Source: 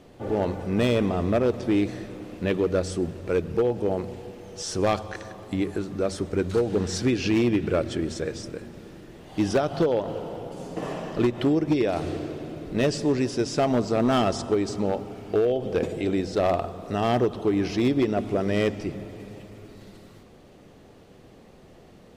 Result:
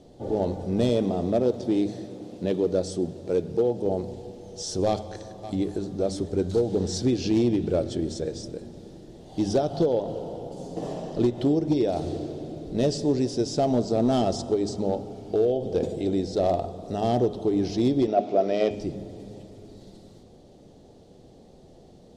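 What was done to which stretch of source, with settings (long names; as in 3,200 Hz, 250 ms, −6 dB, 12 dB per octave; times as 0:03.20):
0:00.89–0:03.86: high-pass filter 120 Hz
0:04.87–0:05.98: delay throw 560 ms, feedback 50%, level −13 dB
0:18.07–0:18.71: loudspeaker in its box 260–6,000 Hz, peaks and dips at 670 Hz +10 dB, 1,300 Hz +5 dB, 2,400 Hz +8 dB
whole clip: low-pass filter 9,200 Hz 12 dB per octave; flat-topped bell 1,700 Hz −12 dB; hum removal 103.3 Hz, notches 37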